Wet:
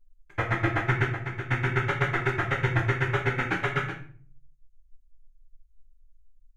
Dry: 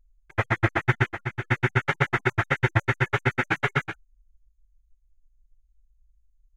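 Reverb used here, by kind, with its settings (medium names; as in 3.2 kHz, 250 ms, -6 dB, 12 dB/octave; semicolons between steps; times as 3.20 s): simulated room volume 45 m³, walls mixed, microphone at 0.62 m; trim -5 dB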